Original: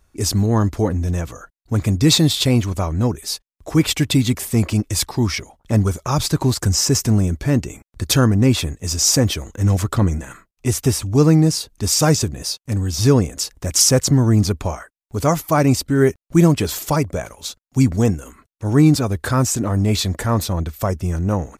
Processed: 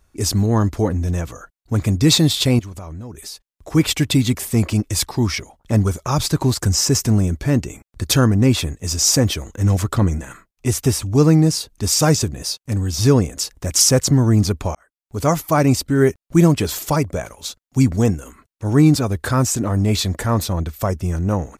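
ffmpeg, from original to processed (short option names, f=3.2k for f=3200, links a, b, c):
-filter_complex "[0:a]asettb=1/sr,asplit=3[a][b][c];[a]atrim=end=2.594[d];[b]atrim=start=2.59:end=3.74,asetpts=PTS-STARTPTS,afade=t=in:d=0.004:c=qsin,afade=t=out:st=1.146:d=0.004:c=qsin,acompressor=threshold=-29dB:ratio=12:attack=3.2:release=140:knee=1:detection=peak[e];[c]atrim=start=3.736[f];[d][e]acrossfade=d=0.004:c1=hsin:c2=qsin[g];[g][f]acrossfade=d=0.004:c1=qsin:c2=hsin,asplit=2[h][i];[h]atrim=end=14.75,asetpts=PTS-STARTPTS,afade=t=out:st=14.746:d=0.004:c=hsin[j];[i]atrim=start=14.75,asetpts=PTS-STARTPTS,afade=t=in:d=0.54[k];[j][k]concat=n=2:v=0:a=1"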